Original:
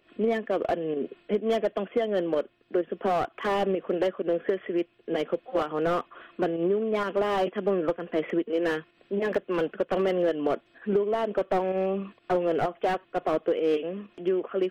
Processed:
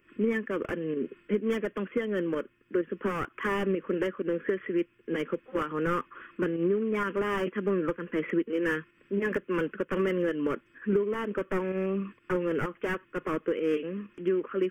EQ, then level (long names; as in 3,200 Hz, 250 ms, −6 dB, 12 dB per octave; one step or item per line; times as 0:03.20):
phaser with its sweep stopped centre 1,700 Hz, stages 4
+2.5 dB